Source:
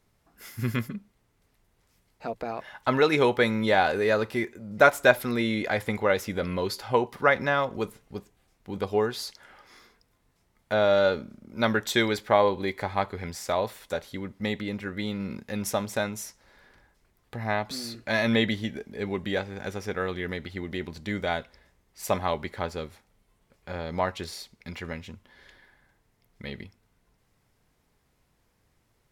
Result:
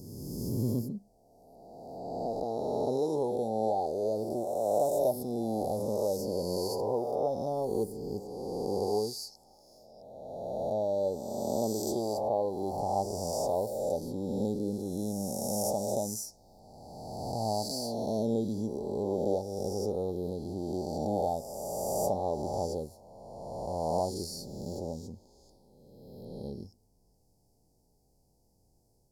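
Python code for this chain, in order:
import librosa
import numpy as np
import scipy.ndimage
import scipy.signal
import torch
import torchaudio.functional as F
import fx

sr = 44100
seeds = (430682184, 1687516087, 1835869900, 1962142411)

y = fx.spec_swells(x, sr, rise_s=1.97)
y = scipy.signal.sosfilt(scipy.signal.cheby1(4, 1.0, [830.0, 4700.0], 'bandstop', fs=sr, output='sos'), y)
y = fx.rider(y, sr, range_db=4, speed_s=0.5)
y = F.gain(torch.from_numpy(y), -6.5).numpy()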